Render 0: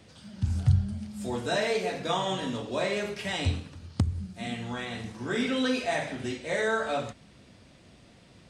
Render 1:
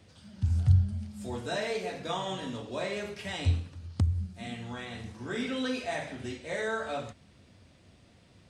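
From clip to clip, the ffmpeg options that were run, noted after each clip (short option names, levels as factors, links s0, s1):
-af "equalizer=f=87:t=o:w=0.42:g=8.5,volume=0.562"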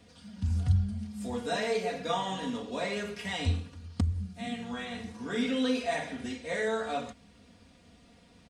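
-af "aecho=1:1:4.2:0.69"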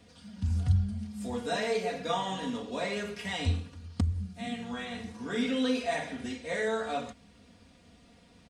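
-af anull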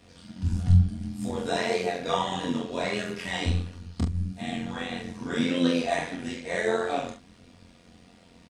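-filter_complex "[0:a]flanger=delay=20:depth=7.2:speed=1.6,asplit=2[s0][s1];[s1]adelay=43,volume=0.501[s2];[s0][s2]amix=inputs=2:normalize=0,tremolo=f=88:d=0.71,volume=2.82"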